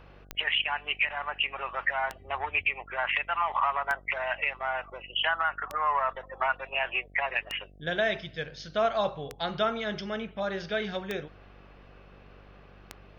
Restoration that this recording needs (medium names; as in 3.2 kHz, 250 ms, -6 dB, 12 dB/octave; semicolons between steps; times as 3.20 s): de-click; de-hum 48.6 Hz, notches 15